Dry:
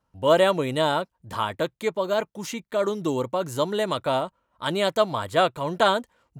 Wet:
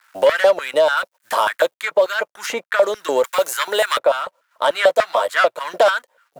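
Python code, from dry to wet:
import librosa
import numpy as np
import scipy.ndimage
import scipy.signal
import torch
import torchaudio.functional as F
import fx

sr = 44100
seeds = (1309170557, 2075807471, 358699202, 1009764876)

p1 = fx.law_mismatch(x, sr, coded='A')
p2 = fx.high_shelf(p1, sr, hz=4500.0, db=9.5, at=(0.97, 1.8))
p3 = fx.level_steps(p2, sr, step_db=10)
p4 = p2 + (p3 * librosa.db_to_amplitude(3.0))
p5 = 10.0 ** (-14.0 / 20.0) * np.tanh(p4 / 10.0 ** (-14.0 / 20.0))
p6 = fx.tilt_eq(p5, sr, slope=4.5, at=(3.24, 3.99))
p7 = fx.doubler(p6, sr, ms=12.0, db=-3, at=(4.73, 5.34))
p8 = fx.filter_lfo_highpass(p7, sr, shape='square', hz=3.4, low_hz=570.0, high_hz=1500.0, q=3.6)
y = fx.band_squash(p8, sr, depth_pct=70)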